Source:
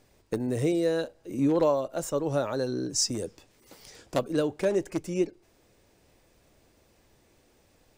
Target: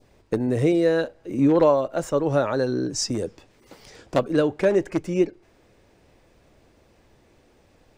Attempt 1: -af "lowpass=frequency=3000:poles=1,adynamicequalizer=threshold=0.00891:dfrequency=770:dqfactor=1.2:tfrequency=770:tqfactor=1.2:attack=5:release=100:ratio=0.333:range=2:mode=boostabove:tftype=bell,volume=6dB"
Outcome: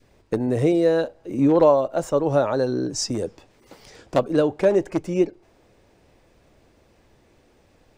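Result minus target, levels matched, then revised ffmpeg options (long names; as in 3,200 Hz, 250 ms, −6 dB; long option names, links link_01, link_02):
2,000 Hz band −3.5 dB
-af "lowpass=frequency=3000:poles=1,adynamicequalizer=threshold=0.00891:dfrequency=1800:dqfactor=1.2:tfrequency=1800:tqfactor=1.2:attack=5:release=100:ratio=0.333:range=2:mode=boostabove:tftype=bell,volume=6dB"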